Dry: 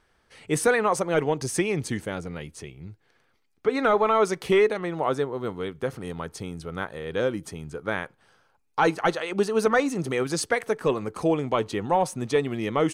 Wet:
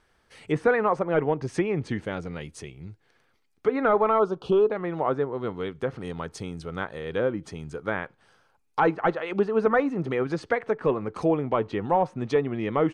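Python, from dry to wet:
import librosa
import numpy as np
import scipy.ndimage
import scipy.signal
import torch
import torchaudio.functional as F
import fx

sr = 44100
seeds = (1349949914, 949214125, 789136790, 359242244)

y = fx.env_lowpass_down(x, sr, base_hz=1800.0, full_db=-22.5)
y = fx.cheby1_bandstop(y, sr, low_hz=1300.0, high_hz=3100.0, order=2, at=(4.18, 4.7), fade=0.02)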